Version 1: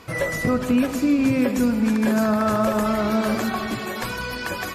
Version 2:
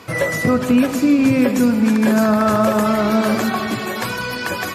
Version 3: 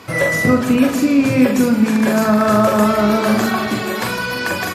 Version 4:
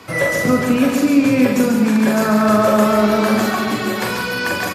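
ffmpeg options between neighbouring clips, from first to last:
ffmpeg -i in.wav -af "highpass=frequency=84:width=0.5412,highpass=frequency=84:width=1.3066,volume=5dB" out.wav
ffmpeg -i in.wav -filter_complex "[0:a]asplit=2[link_01][link_02];[link_02]adelay=43,volume=-4.5dB[link_03];[link_01][link_03]amix=inputs=2:normalize=0,volume=1dB" out.wav
ffmpeg -i in.wav -filter_complex "[0:a]acrossover=split=150|800|5200[link_01][link_02][link_03][link_04];[link_01]asoftclip=type=tanh:threshold=-29.5dB[link_05];[link_05][link_02][link_03][link_04]amix=inputs=4:normalize=0,aecho=1:1:139:0.531,volume=-1dB" out.wav

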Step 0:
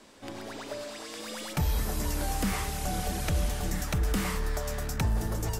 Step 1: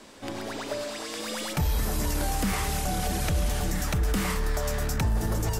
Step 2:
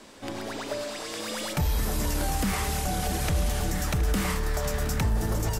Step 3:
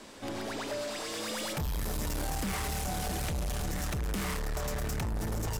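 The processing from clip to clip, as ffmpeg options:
ffmpeg -i in.wav -af "alimiter=level_in=0.5dB:limit=-24dB:level=0:latency=1:release=25,volume=-0.5dB,volume=5.5dB" out.wav
ffmpeg -i in.wav -af "aecho=1:1:720:0.224" out.wav
ffmpeg -i in.wav -af "asoftclip=type=tanh:threshold=-30dB" out.wav

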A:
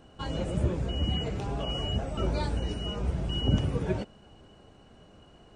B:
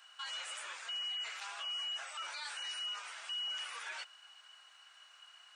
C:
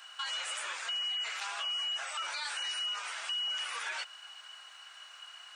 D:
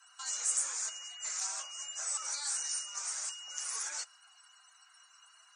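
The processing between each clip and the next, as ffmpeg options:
ffmpeg -i in.wav -af "highpass=frequency=1300:width=0.5412,highpass=frequency=1300:width=1.3066,alimiter=level_in=15.5dB:limit=-24dB:level=0:latency=1:release=19,volume=-15.5dB,volume=5.5dB" out.wav
ffmpeg -i in.wav -af "acompressor=threshold=-44dB:ratio=2,volume=8.5dB" out.wav
ffmpeg -i in.wav -af "afreqshift=-40,afftdn=noise_reduction=23:noise_floor=-56,highshelf=frequency=4500:width_type=q:width=3:gain=13.5,volume=-6.5dB" out.wav

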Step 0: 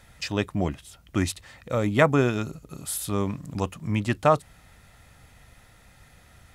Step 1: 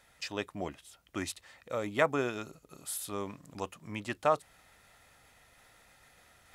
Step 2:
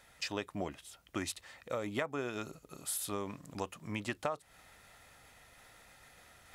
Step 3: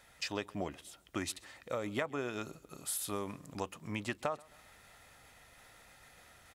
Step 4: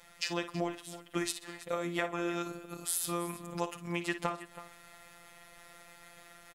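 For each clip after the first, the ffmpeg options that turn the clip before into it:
ffmpeg -i in.wav -af "areverse,acompressor=mode=upward:threshold=-44dB:ratio=2.5,areverse,bass=frequency=250:gain=-12,treble=frequency=4000:gain=0,volume=-7dB" out.wav
ffmpeg -i in.wav -af "acompressor=threshold=-34dB:ratio=10,volume=2dB" out.wav
ffmpeg -i in.wav -af "aecho=1:1:133|266|399:0.0631|0.0284|0.0128" out.wav
ffmpeg -i in.wav -af "afftfilt=real='hypot(re,im)*cos(PI*b)':imag='0':win_size=1024:overlap=0.75,aecho=1:1:55|325:0.266|0.168,volume=7dB" out.wav

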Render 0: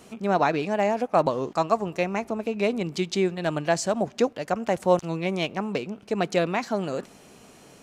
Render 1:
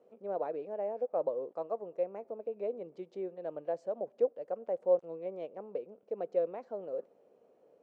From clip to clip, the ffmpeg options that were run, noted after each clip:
ffmpeg -i in.wav -af "bandpass=frequency=510:width_type=q:width=5.4:csg=0,volume=-3.5dB" out.wav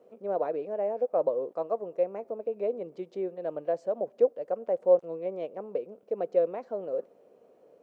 ffmpeg -i in.wav -af "bandreject=frequency=840:width=19,volume=6dB" out.wav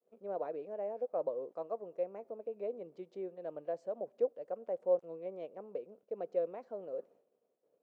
ffmpeg -i in.wav -af "agate=range=-33dB:threshold=-49dB:ratio=3:detection=peak,volume=-9dB" out.wav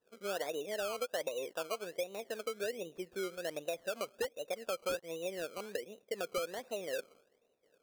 ffmpeg -i in.wav -af "acrusher=samples=19:mix=1:aa=0.000001:lfo=1:lforange=11.4:lforate=1.3,aeval=exprs='0.0531*(abs(mod(val(0)/0.0531+3,4)-2)-1)':channel_layout=same,acompressor=threshold=-38dB:ratio=6,volume=4.5dB" out.wav

